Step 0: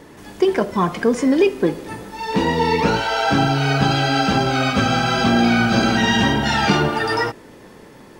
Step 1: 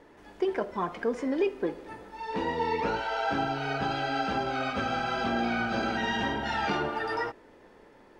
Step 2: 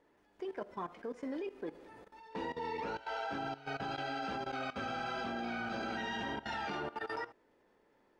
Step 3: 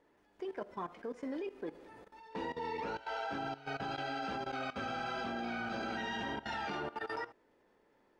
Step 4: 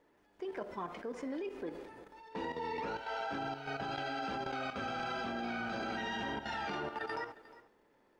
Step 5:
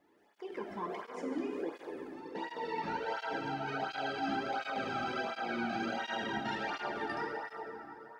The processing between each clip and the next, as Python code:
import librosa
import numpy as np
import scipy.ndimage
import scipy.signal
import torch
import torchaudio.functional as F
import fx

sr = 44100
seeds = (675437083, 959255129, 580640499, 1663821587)

y1 = fx.lowpass(x, sr, hz=1600.0, slope=6)
y1 = fx.peak_eq(y1, sr, hz=140.0, db=-12.0, octaves=2.0)
y1 = fx.notch(y1, sr, hz=1100.0, q=19.0)
y1 = y1 * 10.0 ** (-7.5 / 20.0)
y2 = fx.low_shelf(y1, sr, hz=100.0, db=-5.5)
y2 = fx.level_steps(y2, sr, step_db=16)
y2 = y2 * 10.0 ** (-6.5 / 20.0)
y3 = y2
y4 = fx.transient(y3, sr, attack_db=0, sustain_db=8)
y4 = y4 + 10.0 ** (-18.5 / 20.0) * np.pad(y4, (int(357 * sr / 1000.0), 0))[:len(y4)]
y5 = fx.rev_plate(y4, sr, seeds[0], rt60_s=3.8, hf_ratio=0.55, predelay_ms=0, drr_db=0.0)
y5 = fx.flanger_cancel(y5, sr, hz=1.4, depth_ms=2.2)
y5 = y5 * 10.0 ** (2.0 / 20.0)